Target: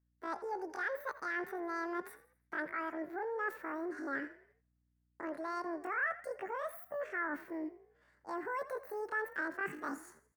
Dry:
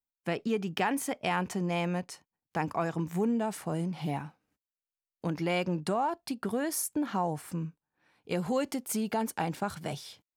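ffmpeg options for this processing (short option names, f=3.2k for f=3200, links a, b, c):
-filter_complex "[0:a]asetrate=85689,aresample=44100,atempo=0.514651,areverse,acompressor=threshold=-38dB:ratio=6,areverse,aeval=exprs='val(0)+0.000141*(sin(2*PI*60*n/s)+sin(2*PI*2*60*n/s)/2+sin(2*PI*3*60*n/s)/3+sin(2*PI*4*60*n/s)/4+sin(2*PI*5*60*n/s)/5)':c=same,highshelf=f=2.4k:t=q:w=3:g=-10,asplit=5[a][b][c][d][e];[b]adelay=83,afreqshift=39,volume=-16dB[f];[c]adelay=166,afreqshift=78,volume=-23.3dB[g];[d]adelay=249,afreqshift=117,volume=-30.7dB[h];[e]adelay=332,afreqshift=156,volume=-38dB[i];[a][f][g][h][i]amix=inputs=5:normalize=0"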